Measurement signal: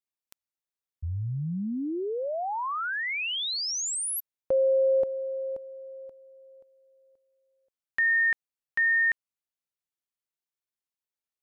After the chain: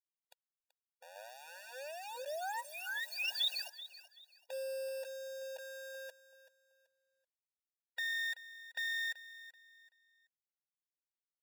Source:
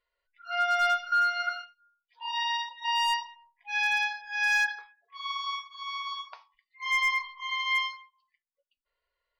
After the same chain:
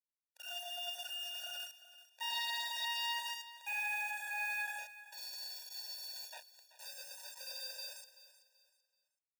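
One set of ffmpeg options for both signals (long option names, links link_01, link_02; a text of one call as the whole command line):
ffmpeg -i in.wav -filter_complex "[0:a]highpass=frequency=68:poles=1,bandreject=frequency=550:width=12,aecho=1:1:6.4:0.41,acompressor=threshold=-40dB:ratio=6:attack=0.45:release=55:knee=1:detection=rms,lowpass=frequency=3600:width_type=q:width=3.1,aresample=11025,aeval=exprs='max(val(0),0)':channel_layout=same,aresample=44100,acrusher=bits=7:mix=0:aa=0.000001,asplit=2[link_01][link_02];[link_02]aecho=0:1:382|764|1146:0.168|0.0504|0.0151[link_03];[link_01][link_03]amix=inputs=2:normalize=0,afftfilt=real='re*eq(mod(floor(b*sr/1024/480),2),1)':imag='im*eq(mod(floor(b*sr/1024/480),2),1)':win_size=1024:overlap=0.75,volume=6dB" out.wav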